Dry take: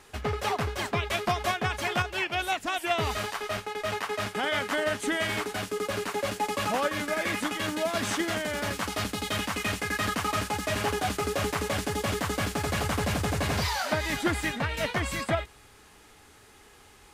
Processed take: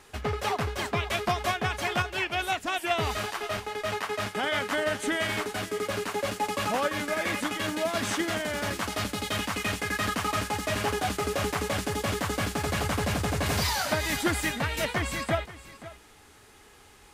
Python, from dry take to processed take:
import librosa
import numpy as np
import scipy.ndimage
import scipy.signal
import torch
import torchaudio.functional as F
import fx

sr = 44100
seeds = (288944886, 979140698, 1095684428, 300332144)

y = fx.high_shelf(x, sr, hz=5800.0, db=7.5, at=(13.46, 14.85))
y = y + 10.0 ** (-16.5 / 20.0) * np.pad(y, (int(530 * sr / 1000.0), 0))[:len(y)]